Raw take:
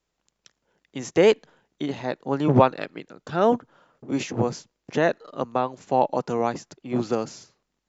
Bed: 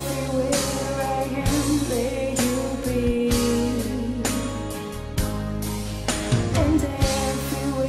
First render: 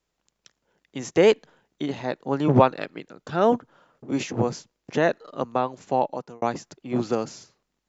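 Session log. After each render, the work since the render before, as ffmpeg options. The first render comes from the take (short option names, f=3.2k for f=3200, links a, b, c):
-filter_complex "[0:a]asplit=2[a][b];[a]atrim=end=6.42,asetpts=PTS-STARTPTS,afade=t=out:st=5.87:d=0.55[c];[b]atrim=start=6.42,asetpts=PTS-STARTPTS,afade=t=in:d=0.004:c=hsin[d];[c][d]concat=n=2:v=0:a=1"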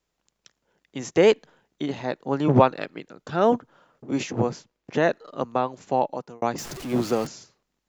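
-filter_complex "[0:a]asettb=1/sr,asplit=3[a][b][c];[a]atrim=end=4.474[d];[b]atrim=start=4.47:end=4.96,asetpts=PTS-STARTPTS,afade=t=in:d=0.004:c=qsin,afade=t=out:st=0.486:d=0.004:c=qsin,bass=f=250:g=-1,treble=f=4k:g=-6[e];[c]atrim=start=4.956[f];[d][e]acrossfade=d=0.004:c1=hsin:c2=qsin[g];[g][f]acrossfade=d=0.004:c1=qsin:c2=hsin,asettb=1/sr,asplit=3[h][i][j];[h]atrim=end=6.584[k];[i]atrim=start=6.58:end=7.27,asetpts=PTS-STARTPTS,afade=t=in:d=0.004:c=qsin,afade=t=out:st=0.686:d=0.004:c=qsin,aeval=exprs='val(0)+0.5*0.0251*sgn(val(0))':c=same[l];[j]atrim=start=7.266[m];[k][l]acrossfade=d=0.004:c1=hsin:c2=qsin[n];[n][m]acrossfade=d=0.004:c1=qsin:c2=hsin"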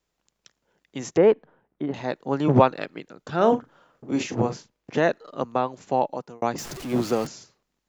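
-filter_complex "[0:a]asettb=1/sr,asplit=3[a][b][c];[a]atrim=end=1.174[d];[b]atrim=start=1.17:end=1.94,asetpts=PTS-STARTPTS,afade=t=in:d=0.004:c=qsin,afade=t=out:st=0.766:d=0.004:c=qsin,lowpass=1.4k[e];[c]atrim=start=1.936[f];[d][e]acrossfade=d=0.004:c1=hsin:c2=qsin[g];[g][f]acrossfade=d=0.004:c1=qsin:c2=hsin,asettb=1/sr,asplit=3[h][i][j];[h]atrim=end=3.364[k];[i]atrim=start=3.36:end=5,asetpts=PTS-STARTPTS,afade=t=in:d=0.004:c=qsin,afade=t=out:st=1.636:d=0.004:c=qsin,asplit=2[l][m];[m]adelay=40,volume=-10dB[n];[l][n]amix=inputs=2:normalize=0,atrim=end_sample=72324[o];[j]atrim=start=4.996[p];[k][o]acrossfade=d=0.004:c1=hsin:c2=qsin[q];[q][p]acrossfade=d=0.004:c1=qsin:c2=hsin"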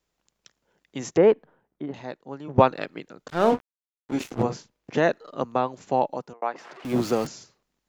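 -filter_complex "[0:a]asettb=1/sr,asplit=3[a][b][c];[a]atrim=end=3.284[d];[b]atrim=start=3.28:end=4.43,asetpts=PTS-STARTPTS,afade=t=in:d=0.004:c=qsin,afade=t=out:st=1.146:d=0.004:c=qsin,aeval=exprs='sgn(val(0))*max(abs(val(0))-0.0237,0)':c=same[e];[c]atrim=start=4.426[f];[d][e]acrossfade=d=0.004:c1=hsin:c2=qsin[g];[g][f]acrossfade=d=0.004:c1=qsin:c2=hsin,asettb=1/sr,asplit=3[h][i][j];[h]atrim=end=6.334[k];[i]atrim=start=6.33:end=6.85,asetpts=PTS-STARTPTS,afade=t=in:d=0.004:c=qsin,afade=t=out:st=0.516:d=0.004:c=qsin,highpass=610,lowpass=2.1k[l];[j]atrim=start=6.846[m];[k][l]acrossfade=d=0.004:c1=hsin:c2=qsin[n];[n][m]acrossfade=d=0.004:c1=qsin:c2=hsin,asplit=2[o][p];[o]atrim=end=2.58,asetpts=PTS-STARTPTS,afade=t=out:st=1.25:d=1.33:silence=0.0841395[q];[p]atrim=start=2.58,asetpts=PTS-STARTPTS,afade=t=in:d=0.004:c=hsin:silence=0.0841395[r];[q][r]concat=n=2:v=0:a=1"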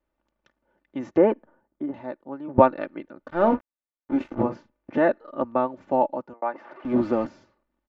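-af "lowpass=1.6k,aecho=1:1:3.4:0.62"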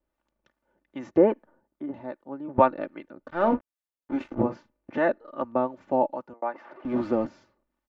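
-filter_complex "[0:a]acrossover=split=760[a][b];[a]aeval=exprs='val(0)*(1-0.5/2+0.5/2*cos(2*PI*2.5*n/s))':c=same[c];[b]aeval=exprs='val(0)*(1-0.5/2-0.5/2*cos(2*PI*2.5*n/s))':c=same[d];[c][d]amix=inputs=2:normalize=0"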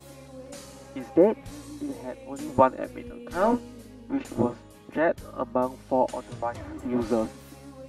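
-filter_complex "[1:a]volume=-20dB[a];[0:a][a]amix=inputs=2:normalize=0"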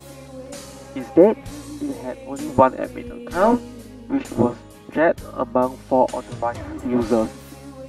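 -af "volume=6.5dB,alimiter=limit=-1dB:level=0:latency=1"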